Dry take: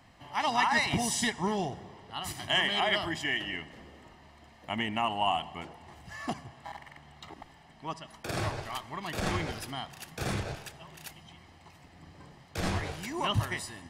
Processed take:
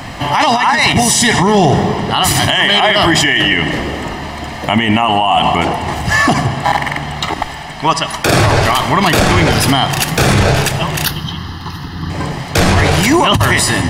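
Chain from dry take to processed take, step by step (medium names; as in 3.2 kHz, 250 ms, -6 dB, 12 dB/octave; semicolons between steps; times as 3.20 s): 7.25–8.26 s: peaking EQ 220 Hz -7 dB 2.9 oct; 9.86–10.37 s: crackle 32 per s -> 92 per s -47 dBFS; 11.05–12.10 s: static phaser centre 2.3 kHz, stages 6; simulated room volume 2900 m³, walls mixed, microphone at 0.33 m; compressor with a negative ratio -31 dBFS, ratio -0.5; loudness maximiser +30.5 dB; trim -1 dB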